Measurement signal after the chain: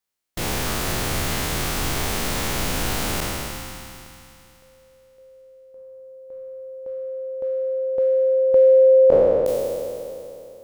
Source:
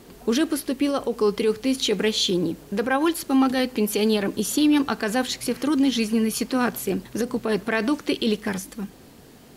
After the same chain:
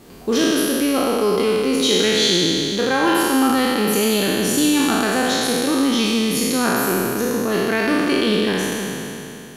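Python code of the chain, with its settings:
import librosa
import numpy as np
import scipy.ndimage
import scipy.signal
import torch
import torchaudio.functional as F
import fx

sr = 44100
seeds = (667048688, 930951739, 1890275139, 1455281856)

y = fx.spec_trails(x, sr, decay_s=2.93)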